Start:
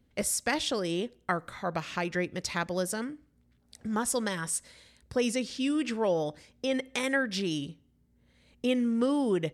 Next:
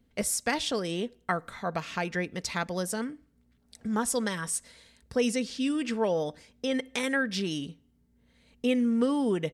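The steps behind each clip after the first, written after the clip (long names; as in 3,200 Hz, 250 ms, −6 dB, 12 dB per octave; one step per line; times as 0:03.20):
comb filter 4.4 ms, depth 30%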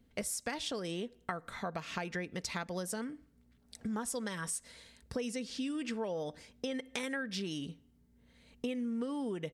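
downward compressor 5 to 1, threshold −35 dBFS, peak gain reduction 13 dB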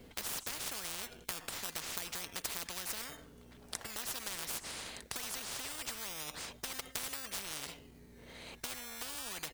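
in parallel at −4 dB: sample-and-hold swept by an LFO 18×, swing 60% 0.26 Hz
on the sum: every bin compressed towards the loudest bin 10 to 1
level +2 dB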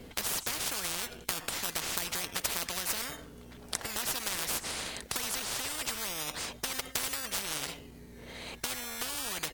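level +7 dB
AAC 96 kbit/s 44,100 Hz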